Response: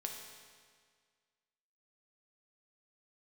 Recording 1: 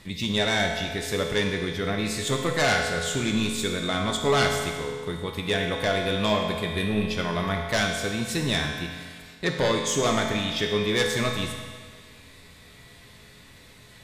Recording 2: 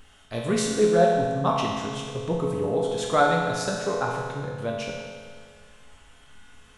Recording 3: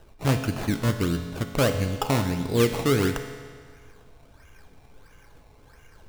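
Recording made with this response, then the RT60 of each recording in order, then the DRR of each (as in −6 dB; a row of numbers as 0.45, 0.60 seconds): 1; 1.8, 1.8, 1.8 seconds; 1.0, −3.0, 5.5 decibels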